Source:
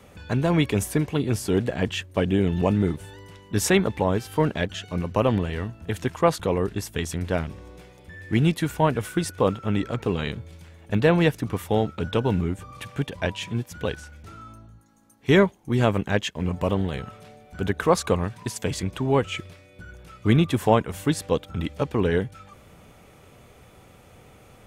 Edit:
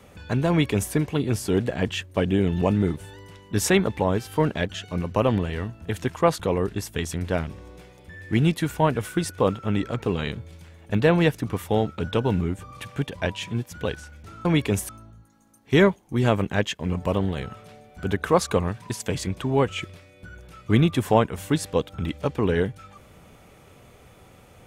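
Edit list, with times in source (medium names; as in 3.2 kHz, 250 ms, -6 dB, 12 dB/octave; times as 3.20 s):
0.49–0.93 s: copy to 14.45 s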